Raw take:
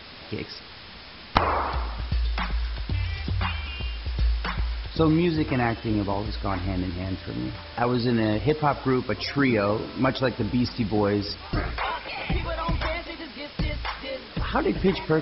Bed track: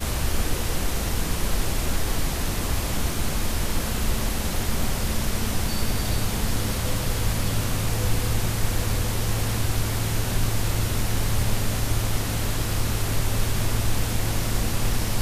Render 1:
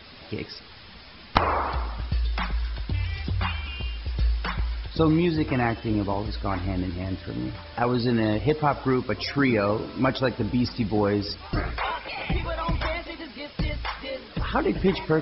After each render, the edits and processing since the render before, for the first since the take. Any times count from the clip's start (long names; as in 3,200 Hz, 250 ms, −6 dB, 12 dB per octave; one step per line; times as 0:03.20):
broadband denoise 6 dB, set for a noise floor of −43 dBFS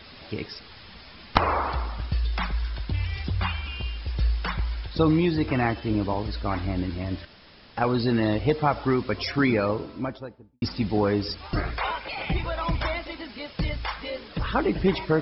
0:07.25–0:07.77: fill with room tone
0:09.41–0:10.62: fade out and dull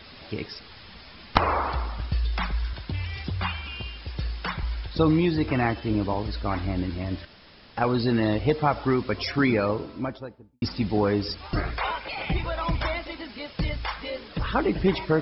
0:02.73–0:04.63: high-pass filter 83 Hz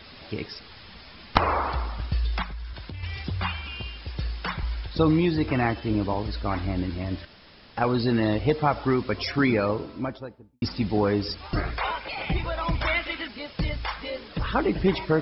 0:02.42–0:03.03: downward compressor 5 to 1, threshold −33 dBFS
0:12.87–0:13.28: flat-topped bell 2,100 Hz +8.5 dB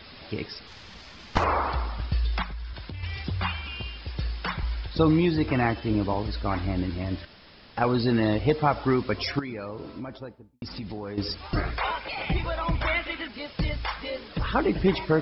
0:00.67–0:01.44: variable-slope delta modulation 32 kbit/s
0:09.39–0:11.18: downward compressor, threshold −32 dBFS
0:12.58–0:13.34: high-frequency loss of the air 110 metres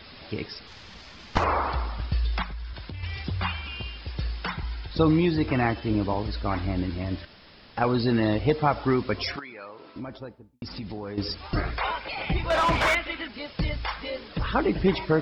0:04.47–0:04.90: notch comb filter 570 Hz
0:09.36–0:09.96: resonant band-pass 2,000 Hz, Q 0.54
0:12.50–0:12.95: mid-hump overdrive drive 26 dB, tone 2,600 Hz, clips at −14.5 dBFS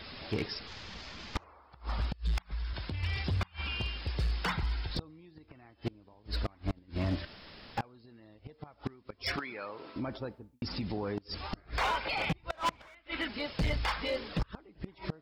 gate with flip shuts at −17 dBFS, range −33 dB
hard clipping −26 dBFS, distortion −12 dB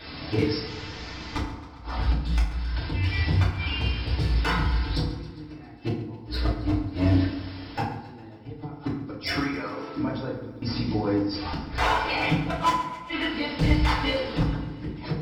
feedback delay network reverb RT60 0.71 s, low-frequency decay 1.45×, high-frequency decay 0.6×, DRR −6.5 dB
feedback echo with a swinging delay time 135 ms, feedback 66%, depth 54 cents, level −16 dB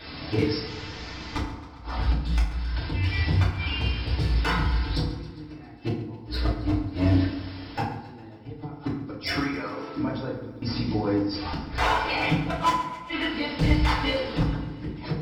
no processing that can be heard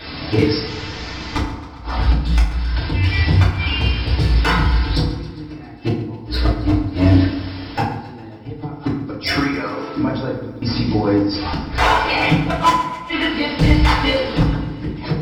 level +8.5 dB
brickwall limiter −1 dBFS, peak gain reduction 1.5 dB